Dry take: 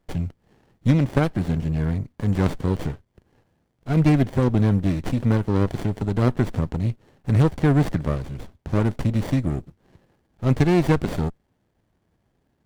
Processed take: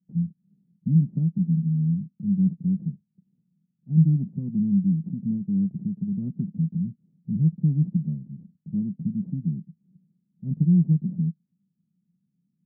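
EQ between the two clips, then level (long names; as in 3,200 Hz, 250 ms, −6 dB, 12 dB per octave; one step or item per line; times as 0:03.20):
flat-topped band-pass 180 Hz, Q 3.4
+4.5 dB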